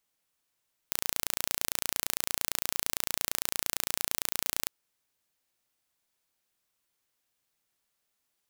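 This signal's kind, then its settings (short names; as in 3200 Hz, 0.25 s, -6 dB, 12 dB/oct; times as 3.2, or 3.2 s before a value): pulse train 28.8/s, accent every 0, -1.5 dBFS 3.76 s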